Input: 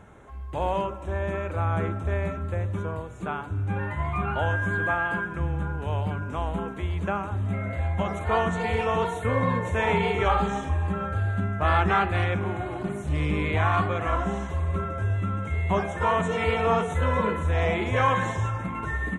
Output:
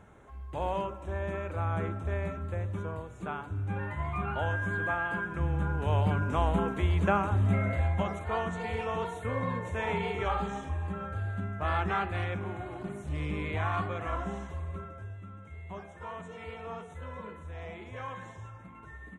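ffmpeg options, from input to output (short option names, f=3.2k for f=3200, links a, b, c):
-af "volume=2dB,afade=t=in:st=5.11:d=1.07:silence=0.421697,afade=t=out:st=7.55:d=0.7:silence=0.316228,afade=t=out:st=14.35:d=0.81:silence=0.316228"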